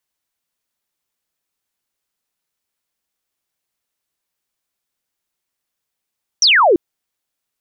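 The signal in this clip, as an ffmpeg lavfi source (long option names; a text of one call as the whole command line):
ffmpeg -f lavfi -i "aevalsrc='0.398*clip(t/0.002,0,1)*clip((0.34-t)/0.002,0,1)*sin(2*PI*6100*0.34/log(310/6100)*(exp(log(310/6100)*t/0.34)-1))':duration=0.34:sample_rate=44100" out.wav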